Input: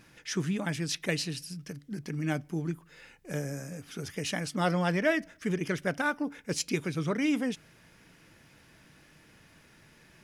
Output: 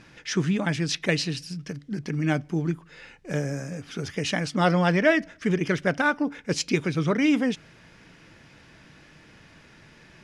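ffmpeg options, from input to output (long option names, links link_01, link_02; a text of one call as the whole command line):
ffmpeg -i in.wav -af "lowpass=6000,volume=6.5dB" out.wav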